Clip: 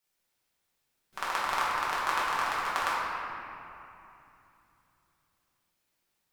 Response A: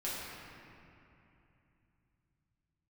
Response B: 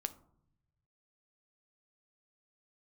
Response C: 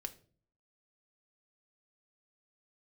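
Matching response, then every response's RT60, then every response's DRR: A; 2.8 s, 0.70 s, 0.45 s; -9.0 dB, 10.0 dB, 7.0 dB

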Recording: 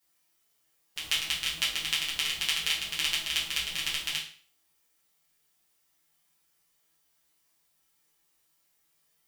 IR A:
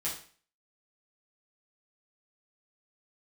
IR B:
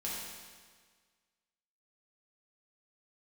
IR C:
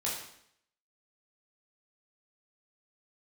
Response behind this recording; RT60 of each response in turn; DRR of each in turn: A; 0.45 s, 1.6 s, 0.70 s; -7.0 dB, -6.5 dB, -6.0 dB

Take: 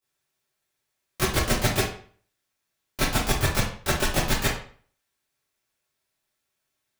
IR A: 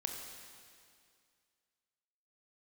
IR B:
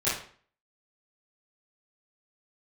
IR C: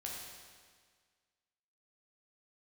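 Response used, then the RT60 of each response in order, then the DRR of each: B; 2.2 s, 0.50 s, 1.7 s; 2.0 dB, -13.0 dB, -3.5 dB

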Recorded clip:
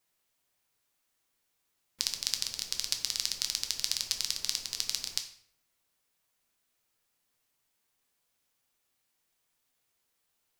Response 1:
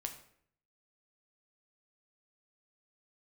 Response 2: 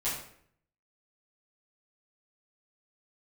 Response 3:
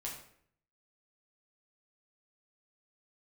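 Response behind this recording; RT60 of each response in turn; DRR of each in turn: 1; 0.60 s, 0.60 s, 0.60 s; 4.5 dB, -10.5 dB, -3.0 dB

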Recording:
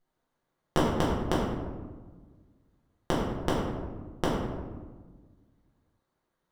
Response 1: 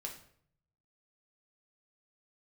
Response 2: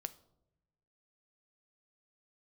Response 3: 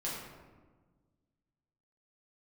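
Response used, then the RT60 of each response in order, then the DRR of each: 3; 0.60 s, 0.90 s, 1.4 s; 0.5 dB, 11.5 dB, -7.0 dB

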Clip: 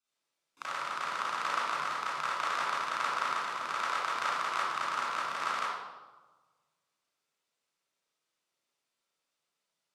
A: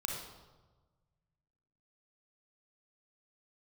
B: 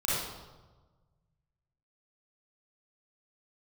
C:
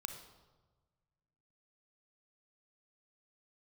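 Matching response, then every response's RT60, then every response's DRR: B; 1.3 s, 1.3 s, 1.3 s; -1.0 dB, -9.0 dB, 5.5 dB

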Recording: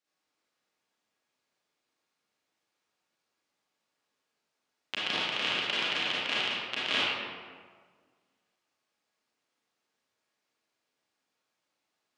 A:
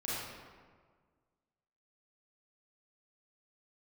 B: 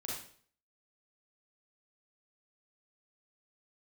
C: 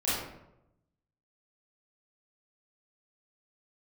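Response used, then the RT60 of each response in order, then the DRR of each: A; 1.6 s, 0.50 s, 0.85 s; -9.0 dB, -5.0 dB, -11.5 dB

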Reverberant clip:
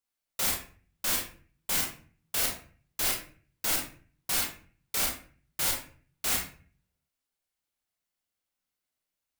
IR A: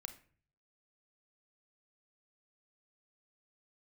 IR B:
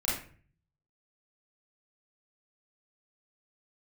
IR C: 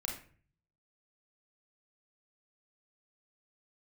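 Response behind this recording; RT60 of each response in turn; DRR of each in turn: C; 0.45 s, 0.45 s, 0.45 s; 8.0 dB, -8.0 dB, -0.5 dB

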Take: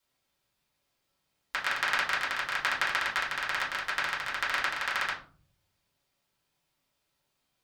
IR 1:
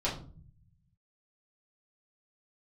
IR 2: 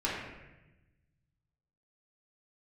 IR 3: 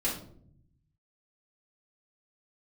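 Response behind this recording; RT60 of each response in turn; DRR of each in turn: 1; 0.45 s, 1.0 s, 0.60 s; -8.0 dB, -8.0 dB, -8.5 dB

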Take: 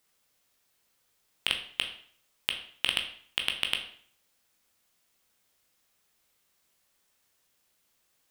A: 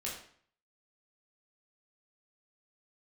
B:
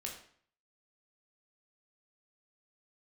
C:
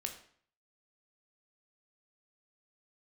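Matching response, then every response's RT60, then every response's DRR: C; 0.55 s, 0.55 s, 0.55 s; -5.5 dB, -1.0 dB, 3.5 dB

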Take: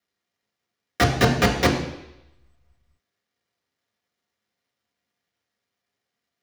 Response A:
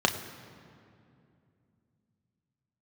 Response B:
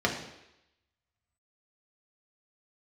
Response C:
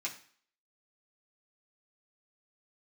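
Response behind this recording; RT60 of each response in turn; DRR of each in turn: B; 2.6 s, 0.85 s, 0.50 s; 4.0 dB, -1.0 dB, -4.5 dB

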